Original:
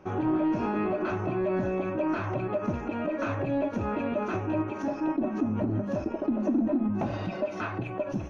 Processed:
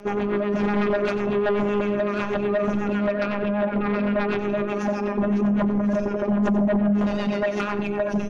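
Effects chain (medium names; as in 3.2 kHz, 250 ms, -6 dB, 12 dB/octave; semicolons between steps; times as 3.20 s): 3.11–4.39 s: steep low-pass 2.9 kHz; in parallel at -2 dB: peak limiter -28 dBFS, peak gain reduction 10.5 dB; on the sum: robot voice 205 Hz; rotary cabinet horn 8 Hz; sine folder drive 7 dB, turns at -18 dBFS; on a send: delay 92 ms -13 dB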